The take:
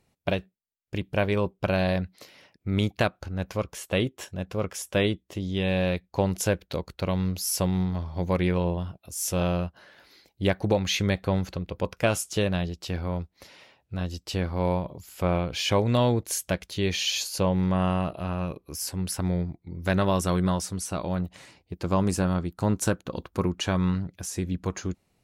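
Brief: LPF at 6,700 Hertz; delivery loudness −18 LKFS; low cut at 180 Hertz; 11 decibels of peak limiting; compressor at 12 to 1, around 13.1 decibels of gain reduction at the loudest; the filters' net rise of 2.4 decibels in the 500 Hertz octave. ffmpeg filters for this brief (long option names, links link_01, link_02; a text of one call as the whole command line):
ffmpeg -i in.wav -af "highpass=180,lowpass=6700,equalizer=frequency=500:width_type=o:gain=3,acompressor=threshold=-30dB:ratio=12,volume=20.5dB,alimiter=limit=-4.5dB:level=0:latency=1" out.wav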